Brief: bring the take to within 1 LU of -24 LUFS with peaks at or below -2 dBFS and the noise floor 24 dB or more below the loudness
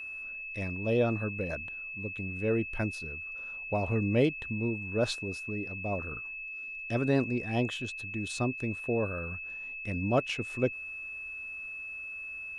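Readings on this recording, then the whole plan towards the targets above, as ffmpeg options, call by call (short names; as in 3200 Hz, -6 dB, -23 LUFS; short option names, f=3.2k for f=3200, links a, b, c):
steady tone 2600 Hz; tone level -38 dBFS; loudness -32.5 LUFS; peak -14.5 dBFS; loudness target -24.0 LUFS
-> -af "bandreject=f=2.6k:w=30"
-af "volume=8.5dB"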